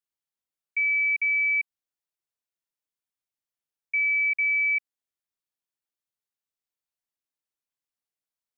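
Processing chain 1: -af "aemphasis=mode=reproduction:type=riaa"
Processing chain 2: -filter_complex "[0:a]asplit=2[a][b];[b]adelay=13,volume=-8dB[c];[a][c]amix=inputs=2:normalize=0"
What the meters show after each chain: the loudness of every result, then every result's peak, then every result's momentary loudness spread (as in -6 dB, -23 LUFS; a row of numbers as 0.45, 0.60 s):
-26.0, -20.0 LUFS; -23.5, -18.0 dBFS; 7, 8 LU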